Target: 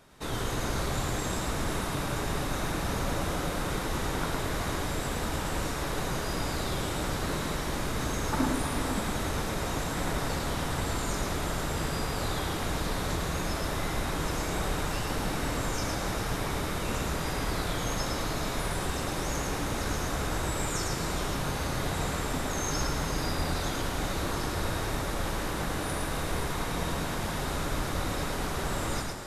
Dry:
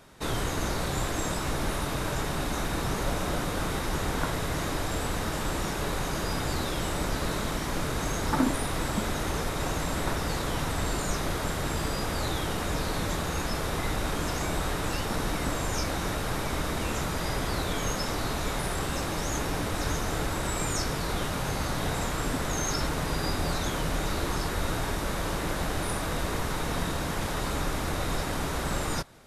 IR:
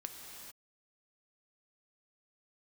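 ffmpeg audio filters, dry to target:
-filter_complex "[0:a]asplit=2[link_01][link_02];[1:a]atrim=start_sample=2205,adelay=110[link_03];[link_02][link_03]afir=irnorm=-1:irlink=0,volume=1.5dB[link_04];[link_01][link_04]amix=inputs=2:normalize=0,volume=-4dB"

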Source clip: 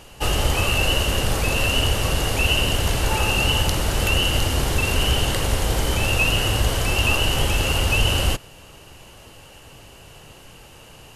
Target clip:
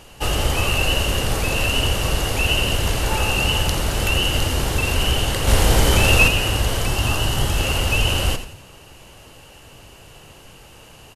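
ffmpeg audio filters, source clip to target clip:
ffmpeg -i in.wav -filter_complex "[0:a]asettb=1/sr,asplit=3[link_01][link_02][link_03];[link_01]atrim=end=5.474[link_04];[link_02]atrim=start=5.47:end=6.28,asetpts=PTS-STARTPTS,afade=type=in:duration=0.004:curve=qsin,afade=type=out:start_time=0.806:duration=0.004:curve=qsin,acontrast=61[link_05];[link_03]atrim=start=6.276[link_06];[link_04][link_05]acrossfade=duration=0.004:curve1=hsin:curve2=qsin[link_07];[link_07][link_06]acrossfade=duration=0.004:curve1=qsin:curve2=hsin,asettb=1/sr,asplit=3[link_08][link_09][link_10];[link_08]atrim=end=6.874[link_11];[link_09]atrim=start=6.87:end=7.57,asetpts=PTS-STARTPTS,afade=type=in:duration=0.004:curve=qsin,afade=type=out:start_time=0.696:duration=0.004:curve=qsin,equalizer=frequency=125:width_type=o:width=0.33:gain=7,equalizer=frequency=500:width_type=o:width=0.33:gain=-5,equalizer=frequency=2500:width_type=o:width=0.33:gain=-8[link_12];[link_10]atrim=start=7.566[link_13];[link_11][link_12]acrossfade=duration=0.004:curve1=hsin:curve2=qsin[link_14];[link_14][link_13]acrossfade=duration=0.004:curve1=qsin:curve2=hsin,asplit=5[link_15][link_16][link_17][link_18][link_19];[link_16]adelay=86,afreqshift=-52,volume=-11dB[link_20];[link_17]adelay=172,afreqshift=-104,volume=-19.4dB[link_21];[link_18]adelay=258,afreqshift=-156,volume=-27.8dB[link_22];[link_19]adelay=344,afreqshift=-208,volume=-36.2dB[link_23];[link_15][link_20][link_21][link_22][link_23]amix=inputs=5:normalize=0" out.wav

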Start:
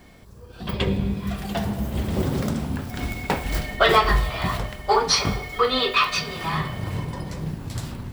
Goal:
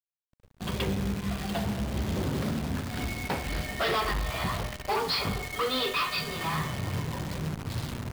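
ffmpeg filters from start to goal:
ffmpeg -i in.wav -filter_complex "[0:a]asplit=2[link_01][link_02];[link_02]acompressor=threshold=-32dB:ratio=8,volume=0.5dB[link_03];[link_01][link_03]amix=inputs=2:normalize=0,agate=range=-33dB:threshold=-28dB:ratio=3:detection=peak,anlmdn=0.398,aresample=11025,volume=18dB,asoftclip=hard,volume=-18dB,aresample=44100,highpass=frequency=48:width=0.5412,highpass=frequency=48:width=1.3066,acrusher=bits=6:dc=4:mix=0:aa=0.000001,volume=-6.5dB" out.wav

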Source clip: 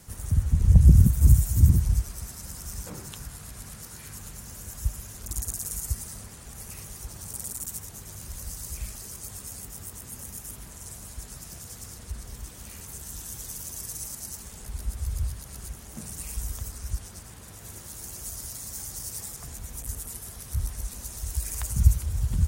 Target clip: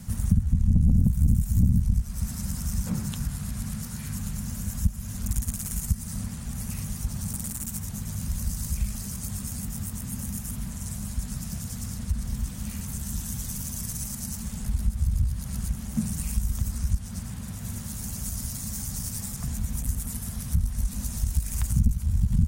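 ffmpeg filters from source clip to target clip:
ffmpeg -i in.wav -af "aeval=exprs='(tanh(7.08*val(0)+0.65)-tanh(0.65))/7.08':channel_layout=same,acompressor=threshold=-36dB:ratio=3,lowshelf=frequency=280:width_type=q:width=3:gain=8,volume=6dB" out.wav

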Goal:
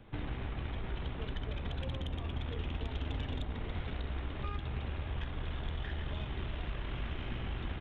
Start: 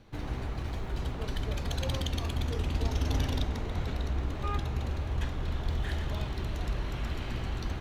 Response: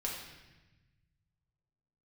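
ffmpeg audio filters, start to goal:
-filter_complex "[0:a]aresample=8000,aresample=44100,aeval=exprs='0.133*(cos(1*acos(clip(val(0)/0.133,-1,1)))-cos(1*PI/2))+0.00841*(cos(6*acos(clip(val(0)/0.133,-1,1)))-cos(6*PI/2))+0.0015*(cos(8*acos(clip(val(0)/0.133,-1,1)))-cos(8*PI/2))':channel_layout=same,acrossover=split=450|1600[link_01][link_02][link_03];[link_01]acompressor=threshold=-36dB:ratio=4[link_04];[link_02]acompressor=threshold=-52dB:ratio=4[link_05];[link_03]acompressor=threshold=-49dB:ratio=4[link_06];[link_04][link_05][link_06]amix=inputs=3:normalize=0,volume=1dB"

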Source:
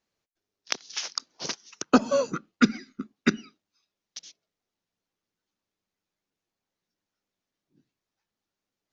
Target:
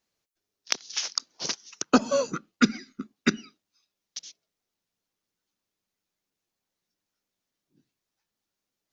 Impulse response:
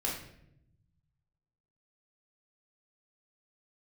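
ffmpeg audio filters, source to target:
-af "highshelf=frequency=4100:gain=6.5,volume=-1dB"

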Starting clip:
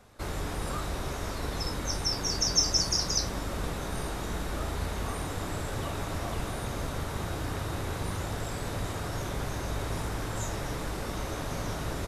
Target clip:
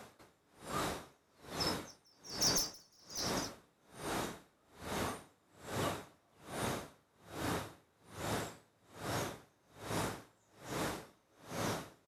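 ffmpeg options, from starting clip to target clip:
ffmpeg -i in.wav -af "highpass=150,areverse,acompressor=mode=upward:threshold=-35dB:ratio=2.5,areverse,aeval=exprs='clip(val(0),-1,0.0944)':channel_layout=same,aecho=1:1:271:0.266,aeval=exprs='0.0668*(abs(mod(val(0)/0.0668+3,4)-2)-1)':channel_layout=same,aeval=exprs='val(0)*pow(10,-37*(0.5-0.5*cos(2*PI*1.2*n/s))/20)':channel_layout=same" out.wav

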